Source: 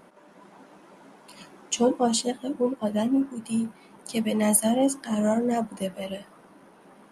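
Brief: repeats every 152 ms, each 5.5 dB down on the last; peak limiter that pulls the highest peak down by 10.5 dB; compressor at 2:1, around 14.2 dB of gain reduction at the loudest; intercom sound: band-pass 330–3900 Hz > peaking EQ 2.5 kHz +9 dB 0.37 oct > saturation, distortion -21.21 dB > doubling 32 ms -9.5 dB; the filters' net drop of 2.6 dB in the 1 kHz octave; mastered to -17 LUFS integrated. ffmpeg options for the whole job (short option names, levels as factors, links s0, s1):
-filter_complex "[0:a]equalizer=f=1000:t=o:g=-4,acompressor=threshold=0.00631:ratio=2,alimiter=level_in=2.51:limit=0.0631:level=0:latency=1,volume=0.398,highpass=330,lowpass=3900,equalizer=f=2500:t=o:w=0.37:g=9,aecho=1:1:152|304|456|608|760|912|1064:0.531|0.281|0.149|0.079|0.0419|0.0222|0.0118,asoftclip=threshold=0.02,asplit=2[s0][s1];[s1]adelay=32,volume=0.335[s2];[s0][s2]amix=inputs=2:normalize=0,volume=28.2"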